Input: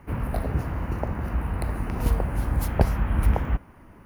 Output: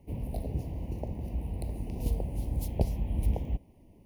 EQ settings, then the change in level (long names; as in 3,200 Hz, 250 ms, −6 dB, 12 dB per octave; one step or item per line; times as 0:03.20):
Butterworth band-reject 1,400 Hz, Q 0.65
−7.0 dB